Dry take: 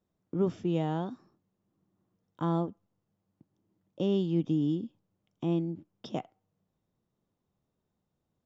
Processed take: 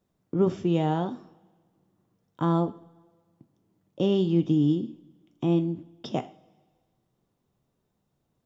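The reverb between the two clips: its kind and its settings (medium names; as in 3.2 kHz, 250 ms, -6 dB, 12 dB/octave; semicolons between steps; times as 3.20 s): two-slope reverb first 0.38 s, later 1.6 s, from -19 dB, DRR 9 dB; trim +5.5 dB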